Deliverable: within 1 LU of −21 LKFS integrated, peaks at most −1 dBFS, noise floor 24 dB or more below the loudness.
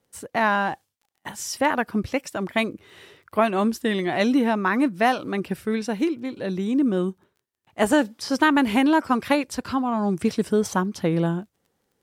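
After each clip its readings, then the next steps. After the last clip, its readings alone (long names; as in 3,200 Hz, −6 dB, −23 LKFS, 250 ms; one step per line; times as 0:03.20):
crackle rate 18 per second; integrated loudness −23.5 LKFS; sample peak −6.5 dBFS; target loudness −21.0 LKFS
→ click removal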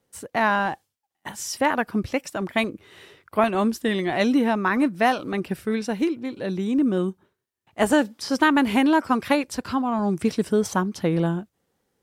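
crackle rate 0.083 per second; integrated loudness −23.5 LKFS; sample peak −6.5 dBFS; target loudness −21.0 LKFS
→ level +2.5 dB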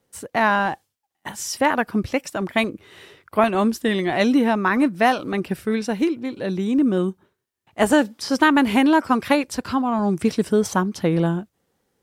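integrated loudness −21.0 LKFS; sample peak −4.0 dBFS; background noise floor −77 dBFS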